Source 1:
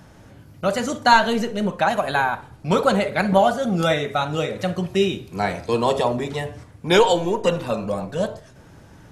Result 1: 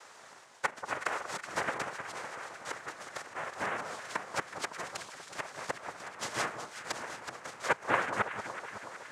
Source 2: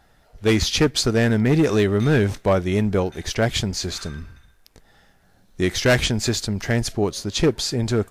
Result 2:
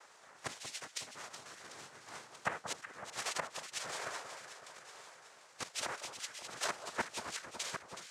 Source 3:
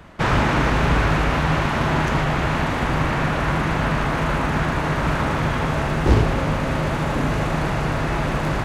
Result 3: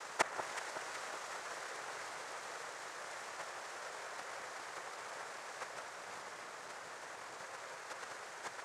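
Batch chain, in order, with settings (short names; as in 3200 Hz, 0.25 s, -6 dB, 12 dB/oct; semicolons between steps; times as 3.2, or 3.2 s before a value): flipped gate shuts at -13 dBFS, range -24 dB; steep high-pass 600 Hz 36 dB/oct; treble ducked by the level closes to 1600 Hz, closed at -32.5 dBFS; noise vocoder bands 3; on a send: echo with dull and thin repeats by turns 0.186 s, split 1300 Hz, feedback 77%, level -8 dB; on the sum: gain +1.5 dB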